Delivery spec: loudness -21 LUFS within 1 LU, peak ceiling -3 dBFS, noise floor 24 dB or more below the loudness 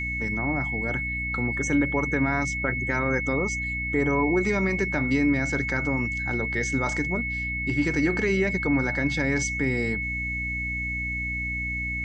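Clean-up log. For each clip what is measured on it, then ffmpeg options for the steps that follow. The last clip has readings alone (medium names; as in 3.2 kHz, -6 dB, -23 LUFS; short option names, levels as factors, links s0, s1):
hum 60 Hz; highest harmonic 300 Hz; hum level -32 dBFS; steady tone 2.2 kHz; tone level -28 dBFS; loudness -25.0 LUFS; peak level -11.0 dBFS; loudness target -21.0 LUFS
-> -af "bandreject=f=60:t=h:w=4,bandreject=f=120:t=h:w=4,bandreject=f=180:t=h:w=4,bandreject=f=240:t=h:w=4,bandreject=f=300:t=h:w=4"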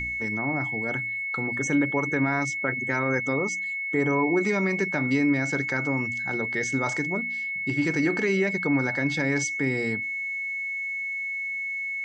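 hum not found; steady tone 2.2 kHz; tone level -28 dBFS
-> -af "bandreject=f=2200:w=30"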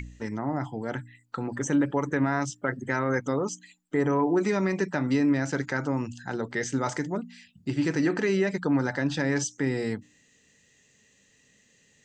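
steady tone not found; loudness -28.0 LUFS; peak level -13.0 dBFS; loudness target -21.0 LUFS
-> -af "volume=2.24"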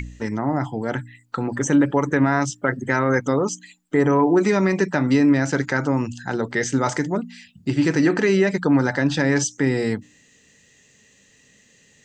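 loudness -21.0 LUFS; peak level -6.0 dBFS; noise floor -57 dBFS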